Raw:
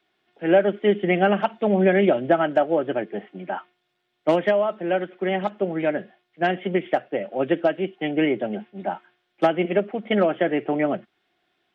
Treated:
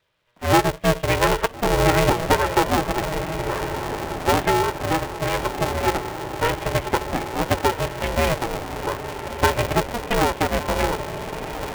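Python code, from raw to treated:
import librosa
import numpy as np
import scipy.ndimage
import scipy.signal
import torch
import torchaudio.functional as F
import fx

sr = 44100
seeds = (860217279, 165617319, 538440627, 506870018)

y = fx.echo_diffused(x, sr, ms=1370, feedback_pct=57, wet_db=-8.5)
y = fx.vibrato(y, sr, rate_hz=1.0, depth_cents=9.2)
y = y * np.sign(np.sin(2.0 * np.pi * 240.0 * np.arange(len(y)) / sr))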